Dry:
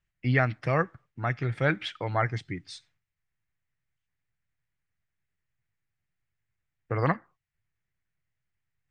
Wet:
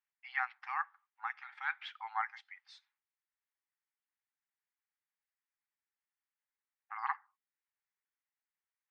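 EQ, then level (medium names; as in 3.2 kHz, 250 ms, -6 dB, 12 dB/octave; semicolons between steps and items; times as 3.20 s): brick-wall FIR high-pass 760 Hz; distance through air 140 m; tilt shelf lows +5 dB, about 1.1 kHz; -4.5 dB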